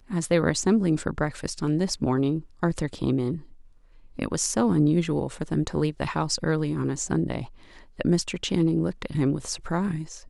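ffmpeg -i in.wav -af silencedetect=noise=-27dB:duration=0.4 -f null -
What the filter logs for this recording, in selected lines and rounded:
silence_start: 3.36
silence_end: 4.19 | silence_duration: 0.84
silence_start: 7.42
silence_end: 8.00 | silence_duration: 0.58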